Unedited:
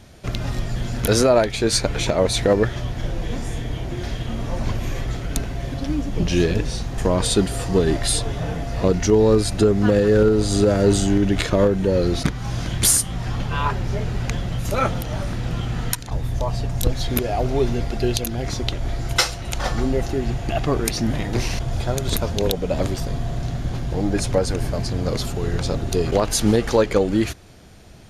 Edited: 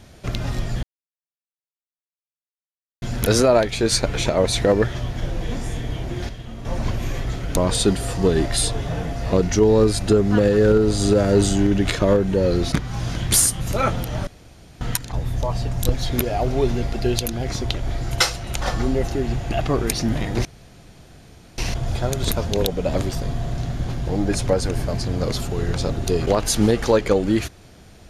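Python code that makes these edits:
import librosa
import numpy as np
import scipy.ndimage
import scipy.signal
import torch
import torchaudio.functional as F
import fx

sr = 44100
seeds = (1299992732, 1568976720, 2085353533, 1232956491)

y = fx.edit(x, sr, fx.insert_silence(at_s=0.83, length_s=2.19),
    fx.clip_gain(start_s=4.1, length_s=0.36, db=-8.0),
    fx.cut(start_s=5.38, length_s=1.7),
    fx.cut(start_s=13.11, length_s=1.47),
    fx.room_tone_fill(start_s=15.25, length_s=0.54),
    fx.insert_room_tone(at_s=21.43, length_s=1.13), tone=tone)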